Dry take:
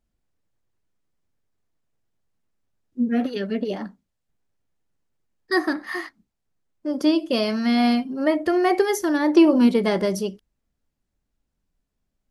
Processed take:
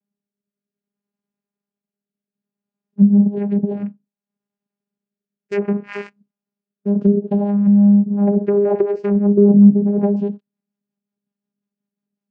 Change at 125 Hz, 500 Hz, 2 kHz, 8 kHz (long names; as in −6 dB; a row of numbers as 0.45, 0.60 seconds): can't be measured, +4.0 dB, −10.5 dB, below −20 dB